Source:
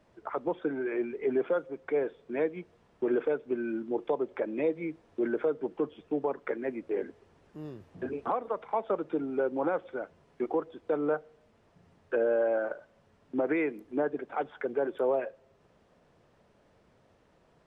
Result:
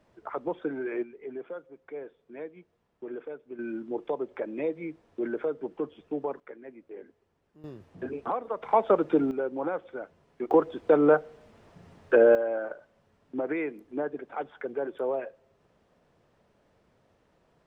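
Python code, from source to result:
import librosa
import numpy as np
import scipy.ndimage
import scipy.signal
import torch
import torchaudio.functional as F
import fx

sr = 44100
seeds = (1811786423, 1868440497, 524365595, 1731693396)

y = fx.gain(x, sr, db=fx.steps((0.0, -0.5), (1.03, -10.5), (3.59, -1.5), (6.4, -12.0), (7.64, 0.0), (8.63, 8.0), (9.31, -1.5), (10.51, 9.0), (12.35, -2.0)))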